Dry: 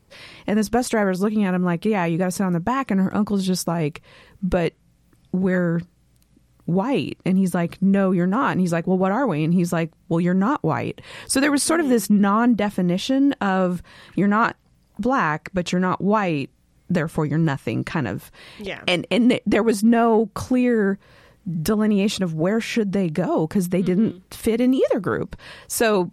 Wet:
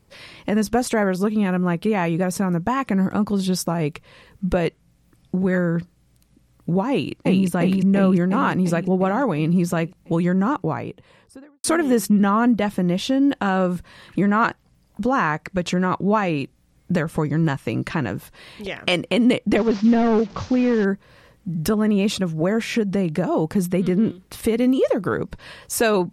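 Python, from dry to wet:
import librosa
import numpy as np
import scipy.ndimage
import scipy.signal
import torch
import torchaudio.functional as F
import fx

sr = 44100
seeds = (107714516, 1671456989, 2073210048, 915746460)

y = fx.echo_throw(x, sr, start_s=6.9, length_s=0.57, ms=350, feedback_pct=65, wet_db=-2.0)
y = fx.studio_fade_out(y, sr, start_s=10.27, length_s=1.37)
y = fx.delta_mod(y, sr, bps=32000, step_db=-36.0, at=(19.57, 20.85))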